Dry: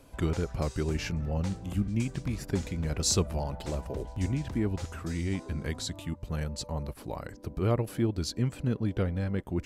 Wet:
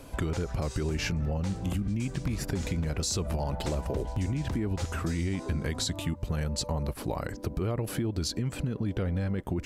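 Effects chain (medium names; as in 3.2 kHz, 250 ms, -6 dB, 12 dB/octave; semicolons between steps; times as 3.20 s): peak limiter -26 dBFS, peak gain reduction 11 dB; compression, threshold -35 dBFS, peak gain reduction 6 dB; trim +8.5 dB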